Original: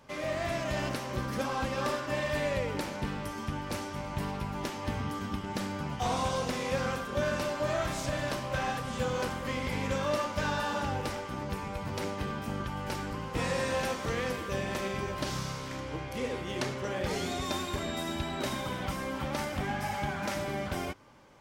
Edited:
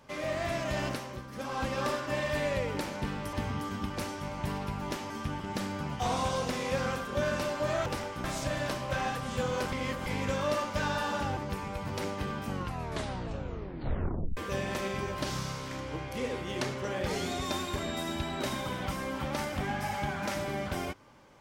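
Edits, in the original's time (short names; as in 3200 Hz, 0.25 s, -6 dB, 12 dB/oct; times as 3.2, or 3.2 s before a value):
0.89–1.65 dip -10.5 dB, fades 0.34 s
3.33–3.63 swap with 4.83–5.4
9.34–9.68 reverse
10.99–11.37 move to 7.86
12.47 tape stop 1.90 s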